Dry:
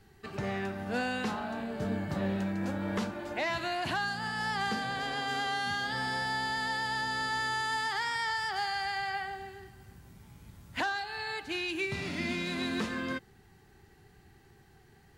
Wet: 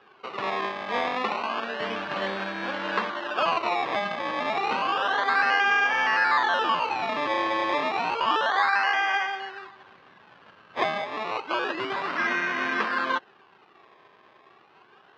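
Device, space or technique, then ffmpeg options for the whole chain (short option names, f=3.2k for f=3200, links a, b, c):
circuit-bent sampling toy: -af "acrusher=samples=21:mix=1:aa=0.000001:lfo=1:lforange=21:lforate=0.3,highpass=450,equalizer=f=1.1k:t=q:w=4:g=9,equalizer=f=1.6k:t=q:w=4:g=7,equalizer=f=2.8k:t=q:w=4:g=5,lowpass=f=4.2k:w=0.5412,lowpass=f=4.2k:w=1.3066,volume=7dB"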